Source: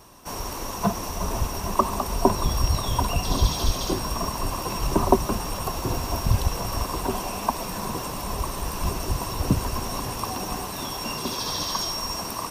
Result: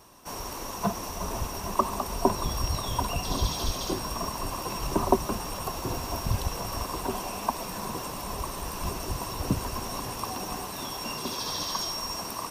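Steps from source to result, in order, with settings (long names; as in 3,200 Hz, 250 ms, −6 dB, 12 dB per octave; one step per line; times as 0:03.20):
low-shelf EQ 140 Hz −4.5 dB
level −3.5 dB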